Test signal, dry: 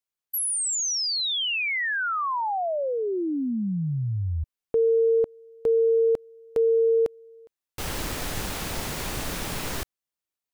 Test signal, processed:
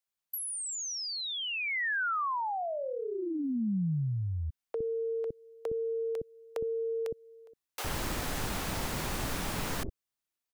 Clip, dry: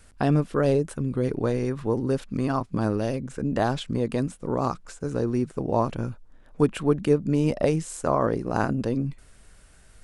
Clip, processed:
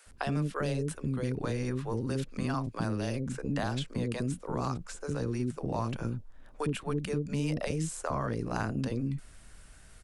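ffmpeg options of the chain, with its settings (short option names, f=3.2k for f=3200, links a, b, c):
-filter_complex "[0:a]acrossover=split=460[a][b];[a]adelay=60[c];[c][b]amix=inputs=2:normalize=0,acrossover=split=180|1600[d][e][f];[d]acompressor=threshold=-34dB:ratio=4[g];[e]acompressor=threshold=-34dB:ratio=4[h];[f]acompressor=threshold=-38dB:ratio=4[i];[g][h][i]amix=inputs=3:normalize=0"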